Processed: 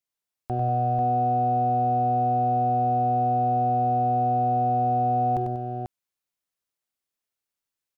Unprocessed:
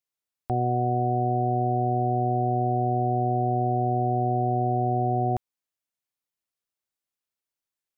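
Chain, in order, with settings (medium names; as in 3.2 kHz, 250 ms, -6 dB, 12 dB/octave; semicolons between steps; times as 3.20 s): in parallel at -12 dB: saturation -32.5 dBFS, distortion -6 dB; on the sum: multi-tap echo 47/72/96/191/492 ms -18/-17.5/-5.5/-12/-5 dB; trim -2.5 dB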